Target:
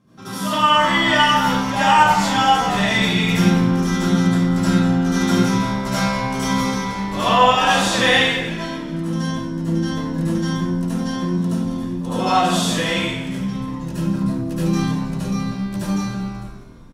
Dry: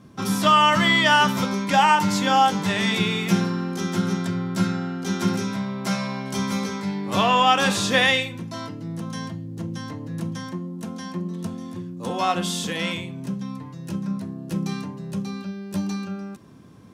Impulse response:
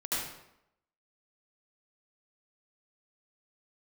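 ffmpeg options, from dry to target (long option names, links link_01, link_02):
-filter_complex "[0:a]dynaudnorm=framelen=230:gausssize=9:maxgain=8dB,asplit=5[link_01][link_02][link_03][link_04][link_05];[link_02]adelay=193,afreqshift=-73,volume=-14dB[link_06];[link_03]adelay=386,afreqshift=-146,volume=-20.6dB[link_07];[link_04]adelay=579,afreqshift=-219,volume=-27.1dB[link_08];[link_05]adelay=772,afreqshift=-292,volume=-33.7dB[link_09];[link_01][link_06][link_07][link_08][link_09]amix=inputs=5:normalize=0[link_10];[1:a]atrim=start_sample=2205[link_11];[link_10][link_11]afir=irnorm=-1:irlink=0,volume=-6dB"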